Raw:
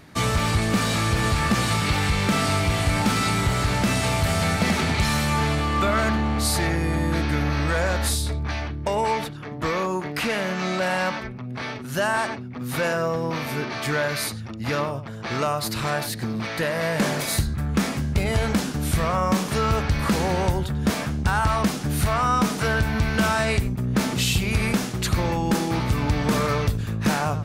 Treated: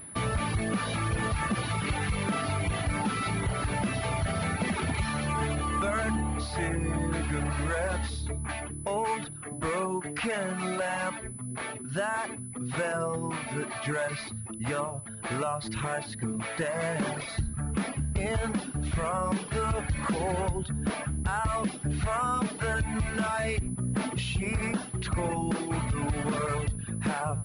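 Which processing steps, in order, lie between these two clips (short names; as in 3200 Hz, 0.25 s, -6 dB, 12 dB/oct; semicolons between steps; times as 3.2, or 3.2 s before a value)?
reverb removal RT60 1.1 s; limiter -18 dBFS, peak gain reduction 6 dB; air absorption 120 m; pulse-width modulation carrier 10000 Hz; gain -2.5 dB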